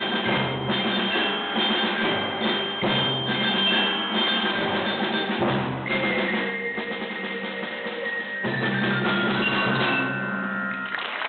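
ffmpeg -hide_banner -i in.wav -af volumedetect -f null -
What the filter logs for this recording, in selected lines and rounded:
mean_volume: -24.9 dB
max_volume: -11.0 dB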